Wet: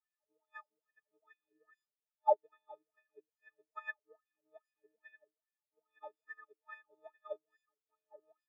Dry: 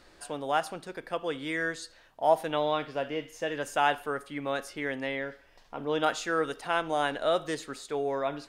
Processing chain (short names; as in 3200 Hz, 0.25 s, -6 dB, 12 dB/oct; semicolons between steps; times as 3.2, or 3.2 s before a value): frequency quantiser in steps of 6 st; wah 2.4 Hz 340–2100 Hz, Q 8.3; upward expander 2.5:1, over -47 dBFS